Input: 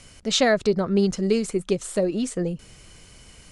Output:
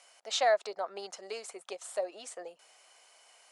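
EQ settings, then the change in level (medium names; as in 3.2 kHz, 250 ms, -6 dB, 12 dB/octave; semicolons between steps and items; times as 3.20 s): ladder high-pass 630 Hz, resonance 55%; 0.0 dB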